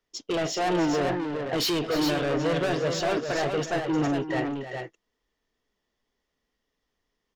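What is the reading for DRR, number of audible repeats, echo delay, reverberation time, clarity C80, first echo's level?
no reverb audible, 2, 306 ms, no reverb audible, no reverb audible, −11.5 dB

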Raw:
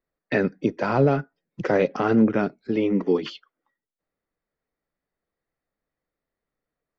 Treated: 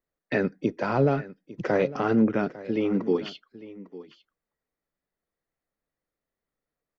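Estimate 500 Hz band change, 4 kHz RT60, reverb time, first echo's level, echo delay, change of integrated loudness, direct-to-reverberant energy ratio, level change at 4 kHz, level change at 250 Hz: −3.0 dB, no reverb audible, no reverb audible, −17.5 dB, 852 ms, −3.0 dB, no reverb audible, −3.0 dB, −3.0 dB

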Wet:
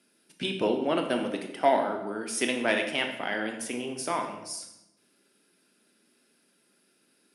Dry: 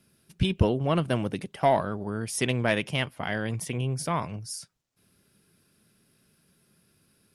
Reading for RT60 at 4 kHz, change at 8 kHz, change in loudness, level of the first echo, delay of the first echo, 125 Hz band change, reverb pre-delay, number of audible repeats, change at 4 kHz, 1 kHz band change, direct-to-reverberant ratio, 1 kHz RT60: 0.70 s, 0.0 dB, −1.0 dB, no echo audible, no echo audible, −17.5 dB, 16 ms, no echo audible, +1.0 dB, 0.0 dB, 4.0 dB, 0.80 s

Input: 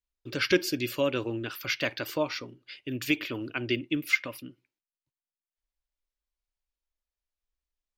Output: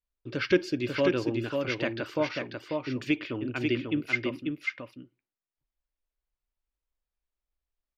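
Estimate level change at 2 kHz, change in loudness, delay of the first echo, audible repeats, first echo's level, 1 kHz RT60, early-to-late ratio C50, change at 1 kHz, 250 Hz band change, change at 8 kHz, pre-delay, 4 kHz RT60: −1.5 dB, 0.0 dB, 542 ms, 1, −4.0 dB, no reverb audible, no reverb audible, +0.5 dB, +2.5 dB, can't be measured, no reverb audible, no reverb audible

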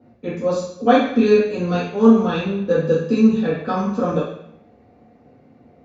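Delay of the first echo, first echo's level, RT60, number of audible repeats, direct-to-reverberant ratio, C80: no echo audible, no echo audible, 0.75 s, no echo audible, −9.0 dB, 7.0 dB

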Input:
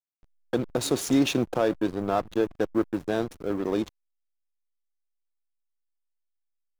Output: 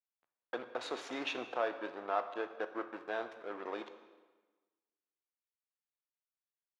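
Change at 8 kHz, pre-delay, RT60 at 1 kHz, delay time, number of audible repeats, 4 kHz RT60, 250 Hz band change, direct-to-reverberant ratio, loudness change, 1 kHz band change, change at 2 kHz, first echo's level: below −20 dB, 12 ms, 1.3 s, no echo audible, no echo audible, 1.1 s, −20.5 dB, 9.0 dB, −12.5 dB, −6.0 dB, −4.5 dB, no echo audible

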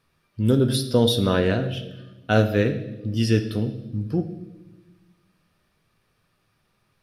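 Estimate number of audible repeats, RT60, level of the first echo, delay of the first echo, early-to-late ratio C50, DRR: no echo audible, 1.1 s, no echo audible, no echo audible, 11.0 dB, 7.0 dB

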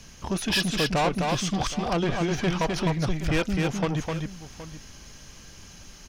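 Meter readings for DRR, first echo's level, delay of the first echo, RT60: no reverb audible, −3.5 dB, 257 ms, no reverb audible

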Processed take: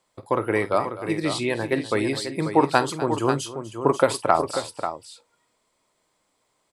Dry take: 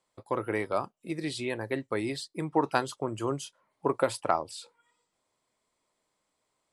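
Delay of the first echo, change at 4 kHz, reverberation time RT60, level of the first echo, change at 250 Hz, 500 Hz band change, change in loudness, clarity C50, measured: 49 ms, +8.0 dB, no reverb audible, −15.5 dB, +8.0 dB, +8.5 dB, +8.0 dB, no reverb audible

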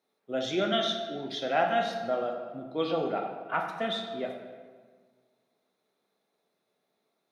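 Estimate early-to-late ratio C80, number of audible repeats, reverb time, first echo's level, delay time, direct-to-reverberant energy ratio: 6.5 dB, no echo audible, 1.6 s, no echo audible, no echo audible, 2.0 dB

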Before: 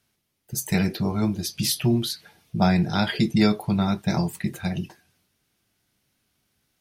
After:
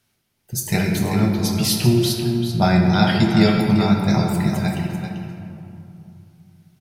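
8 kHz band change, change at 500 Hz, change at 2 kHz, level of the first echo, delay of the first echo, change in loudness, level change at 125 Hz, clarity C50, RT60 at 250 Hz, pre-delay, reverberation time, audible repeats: +4.0 dB, +6.5 dB, +5.5 dB, −8.0 dB, 390 ms, +5.5 dB, +7.0 dB, 1.5 dB, 3.0 s, 8 ms, 2.7 s, 1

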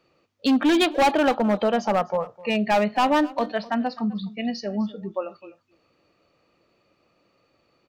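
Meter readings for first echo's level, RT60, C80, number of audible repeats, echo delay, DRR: −20.0 dB, no reverb audible, no reverb audible, 1, 256 ms, no reverb audible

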